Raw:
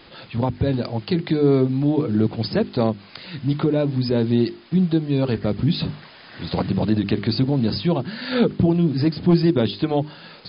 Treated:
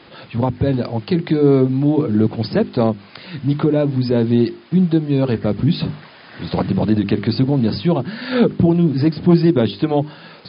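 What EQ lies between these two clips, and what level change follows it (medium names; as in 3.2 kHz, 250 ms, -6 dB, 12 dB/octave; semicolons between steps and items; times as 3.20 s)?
high-pass 79 Hz; low-pass 3 kHz 6 dB/octave; +4.0 dB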